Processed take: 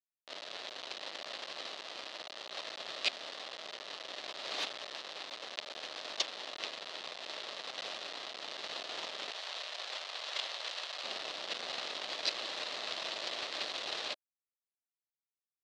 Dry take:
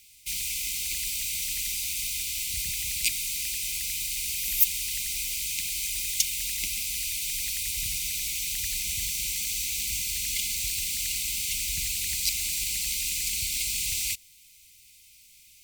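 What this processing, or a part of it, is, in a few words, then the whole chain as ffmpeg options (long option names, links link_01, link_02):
hand-held game console: -filter_complex "[0:a]acrusher=bits=3:mix=0:aa=0.000001,highpass=410,equalizer=frequency=610:width_type=q:width=4:gain=6,equalizer=frequency=920:width_type=q:width=4:gain=-3,equalizer=frequency=1500:width_type=q:width=4:gain=-5,equalizer=frequency=2300:width_type=q:width=4:gain=-6,equalizer=frequency=4000:width_type=q:width=4:gain=3,lowpass=frequency=4100:width=0.5412,lowpass=frequency=4100:width=1.3066,asettb=1/sr,asplit=3[link_01][link_02][link_03];[link_01]atrim=end=9.304[link_04];[link_02]atrim=start=9.3:end=11.04,asetpts=PTS-STARTPTS,afade=type=in:duration=0.004:curve=qsin,afade=type=out:start_time=1.736:duration=0.004:curve=qsin,highpass=610[link_05];[link_03]atrim=start=11.036[link_06];[link_04][link_05]acrossfade=duration=0.004:curve1=hsin:curve2=qsin[link_07];[link_07][link_06]acrossfade=duration=0.004:curve1=qsin:curve2=hsin"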